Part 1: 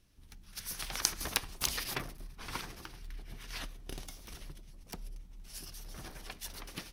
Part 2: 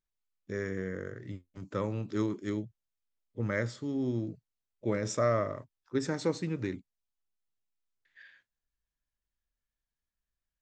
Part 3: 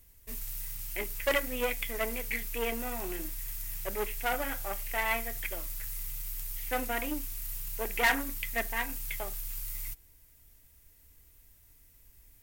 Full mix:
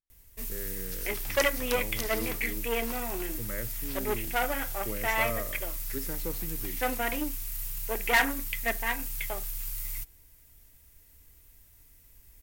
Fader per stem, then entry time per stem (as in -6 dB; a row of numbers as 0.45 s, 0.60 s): -5.0 dB, -7.5 dB, +2.5 dB; 0.35 s, 0.00 s, 0.10 s